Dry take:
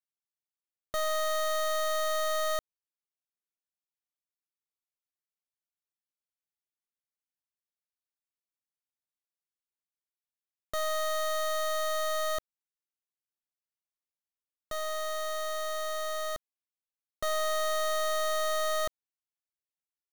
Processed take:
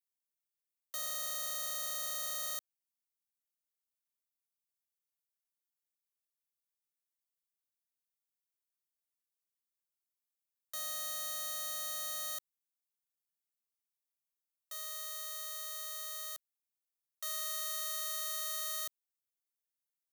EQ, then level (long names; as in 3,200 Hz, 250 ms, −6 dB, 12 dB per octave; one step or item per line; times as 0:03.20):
high-pass filter 480 Hz 12 dB per octave
first difference
0.0 dB